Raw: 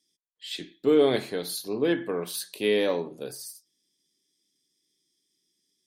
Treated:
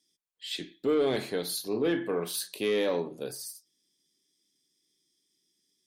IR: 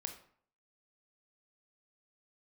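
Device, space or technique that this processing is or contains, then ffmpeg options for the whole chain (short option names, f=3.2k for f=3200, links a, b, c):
soft clipper into limiter: -filter_complex "[0:a]asoftclip=type=tanh:threshold=-16dB,alimiter=limit=-20dB:level=0:latency=1,asettb=1/sr,asplit=3[a][b][c];[a]atrim=end=1.684[d];[b]atrim=start=1.68:end=2.48,asetpts=PTS-STARTPTS,afade=t=in:d=0.004:c=qsin,afade=t=out:st=0.796:d=0.004:c=qsin,asplit=2[e][f];[f]adelay=36,volume=-12dB[g];[e][g]amix=inputs=2:normalize=0,atrim=end_sample=35280[h];[c]atrim=start=2.476[i];[d][h]acrossfade=d=0.004:c1=hsin:c2=qsin[j];[j][i]acrossfade=d=0.004:c1=qsin:c2=hsin"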